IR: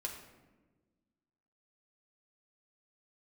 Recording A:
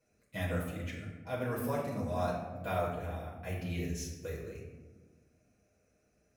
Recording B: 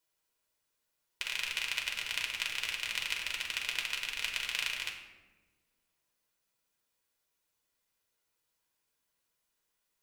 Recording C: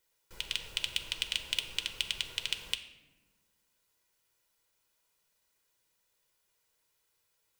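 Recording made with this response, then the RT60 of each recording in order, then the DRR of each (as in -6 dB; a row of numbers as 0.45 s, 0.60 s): B; 1.3 s, 1.3 s, 1.3 s; -8.0 dB, 0.0 dB, 6.5 dB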